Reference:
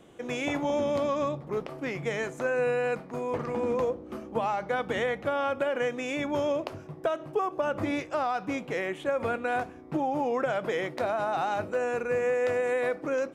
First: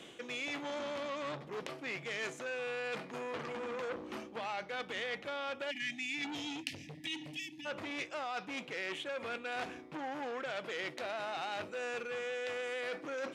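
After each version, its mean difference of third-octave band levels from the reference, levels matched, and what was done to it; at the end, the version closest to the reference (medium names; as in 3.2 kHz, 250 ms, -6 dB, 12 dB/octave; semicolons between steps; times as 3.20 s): 6.5 dB: spectral selection erased 5.71–7.66 s, 330–1700 Hz; frequency weighting D; reverse; compression 12:1, threshold -35 dBFS, peak gain reduction 14.5 dB; reverse; transformer saturation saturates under 3.9 kHz; trim +1.5 dB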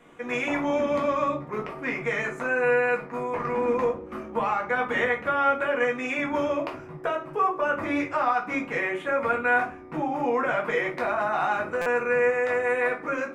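4.0 dB: high-order bell 1.5 kHz +9.5 dB; hum notches 50/100 Hz; simulated room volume 150 m³, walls furnished, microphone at 1.8 m; buffer glitch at 11.81 s, samples 256, times 8; trim -5 dB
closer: second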